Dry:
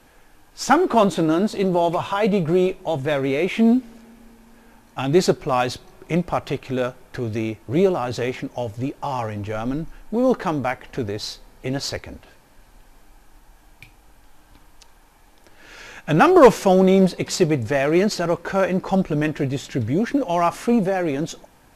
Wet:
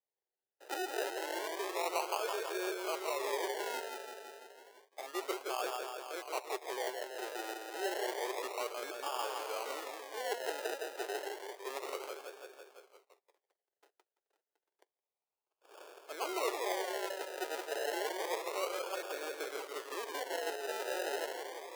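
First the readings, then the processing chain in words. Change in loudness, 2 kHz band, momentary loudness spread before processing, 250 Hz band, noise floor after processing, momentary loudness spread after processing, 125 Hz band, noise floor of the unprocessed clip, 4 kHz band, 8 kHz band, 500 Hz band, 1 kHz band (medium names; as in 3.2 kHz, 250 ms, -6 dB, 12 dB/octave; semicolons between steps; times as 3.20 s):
-18.0 dB, -12.0 dB, 12 LU, -28.5 dB, under -85 dBFS, 10 LU, under -40 dB, -53 dBFS, -10.0 dB, -9.5 dB, -17.5 dB, -15.5 dB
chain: companding laws mixed up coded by A; reverse; compression 5:1, threshold -28 dBFS, peak gain reduction 19.5 dB; reverse; treble shelf 5.6 kHz -7 dB; on a send: tape echo 167 ms, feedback 74%, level -3.5 dB, low-pass 5 kHz; on the sum: gate -49 dBFS, range -29 dB; decimation with a swept rate 31×, swing 60% 0.3 Hz; elliptic high-pass 390 Hz, stop band 50 dB; trim -6 dB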